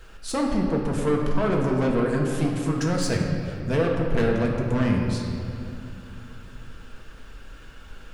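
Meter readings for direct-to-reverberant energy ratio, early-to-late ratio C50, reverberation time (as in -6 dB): -1.0 dB, 2.0 dB, 2.7 s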